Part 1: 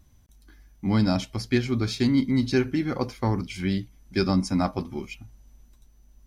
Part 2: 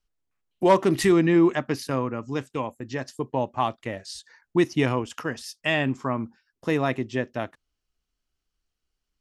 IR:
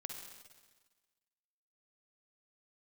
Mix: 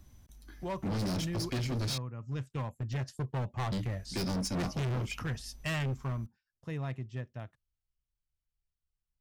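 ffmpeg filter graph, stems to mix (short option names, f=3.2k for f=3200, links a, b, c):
-filter_complex "[0:a]acrossover=split=180|3000[a][b][c];[b]acompressor=threshold=-38dB:ratio=2[d];[a][d][c]amix=inputs=3:normalize=0,volume=1dB,asplit=3[e][f][g];[e]atrim=end=1.98,asetpts=PTS-STARTPTS,afade=t=out:st=1.976:d=0.004:c=hsin[h];[f]atrim=start=1.98:end=3.72,asetpts=PTS-STARTPTS,volume=0[i];[g]atrim=start=3.72,asetpts=PTS-STARTPTS,afade=t=in:d=0.004:c=hsin[j];[h][i][j]concat=n=3:v=0:a=1[k];[1:a]lowshelf=f=190:t=q:w=1.5:g=11.5,volume=-6.5dB,afade=t=in:st=2.13:d=0.71:silence=0.266073,afade=t=out:st=5.72:d=0.58:silence=0.298538[l];[k][l]amix=inputs=2:normalize=0,asoftclip=type=hard:threshold=-30.5dB"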